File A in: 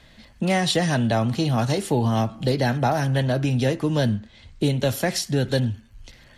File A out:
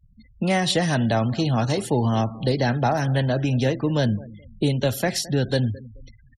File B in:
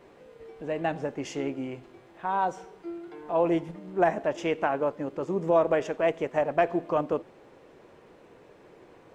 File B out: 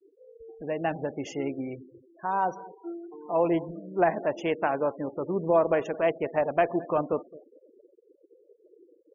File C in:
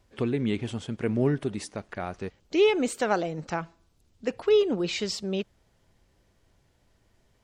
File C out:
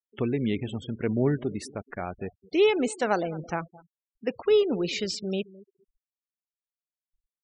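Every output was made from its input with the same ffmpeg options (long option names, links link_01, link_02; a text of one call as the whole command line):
ffmpeg -i in.wav -filter_complex "[0:a]asplit=2[link_01][link_02];[link_02]adelay=215,lowpass=frequency=4100:poles=1,volume=-19.5dB,asplit=2[link_03][link_04];[link_04]adelay=215,lowpass=frequency=4100:poles=1,volume=0.31,asplit=2[link_05][link_06];[link_06]adelay=215,lowpass=frequency=4100:poles=1,volume=0.31[link_07];[link_01][link_03][link_05][link_07]amix=inputs=4:normalize=0,afftfilt=real='re*gte(hypot(re,im),0.0126)':imag='im*gte(hypot(re,im),0.0126)':win_size=1024:overlap=0.75" out.wav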